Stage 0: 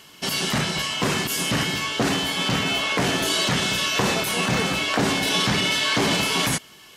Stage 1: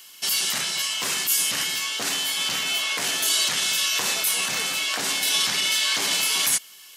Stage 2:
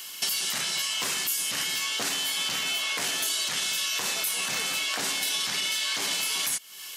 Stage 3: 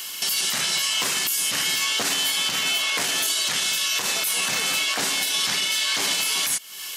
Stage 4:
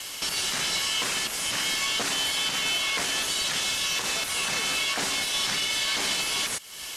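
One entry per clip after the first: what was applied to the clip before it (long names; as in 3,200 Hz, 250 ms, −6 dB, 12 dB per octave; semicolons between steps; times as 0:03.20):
spectral tilt +4.5 dB per octave; level −7.5 dB
downward compressor 6 to 1, threshold −33 dBFS, peak gain reduction 14.5 dB; level +6.5 dB
brickwall limiter −20 dBFS, peak gain reduction 5.5 dB; level +6.5 dB
variable-slope delta modulation 64 kbit/s; level −2.5 dB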